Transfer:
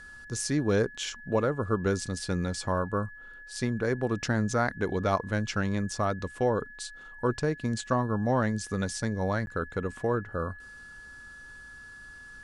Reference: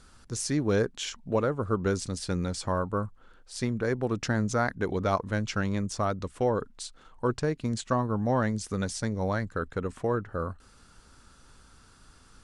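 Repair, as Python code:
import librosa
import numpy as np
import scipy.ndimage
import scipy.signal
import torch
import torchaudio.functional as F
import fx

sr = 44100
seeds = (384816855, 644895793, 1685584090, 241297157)

y = fx.notch(x, sr, hz=1700.0, q=30.0)
y = fx.fix_interpolate(y, sr, at_s=(9.46,), length_ms=11.0)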